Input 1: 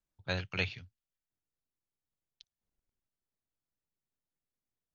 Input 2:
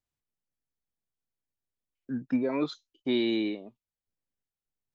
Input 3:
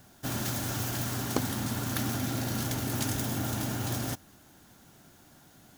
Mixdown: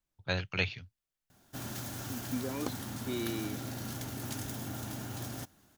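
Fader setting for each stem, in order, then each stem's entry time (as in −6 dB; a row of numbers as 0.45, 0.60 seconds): +2.0, −9.5, −8.0 decibels; 0.00, 0.00, 1.30 seconds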